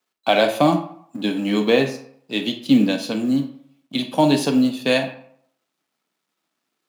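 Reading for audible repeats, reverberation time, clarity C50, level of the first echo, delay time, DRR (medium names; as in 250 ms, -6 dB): no echo, 0.65 s, 10.0 dB, no echo, no echo, 7.0 dB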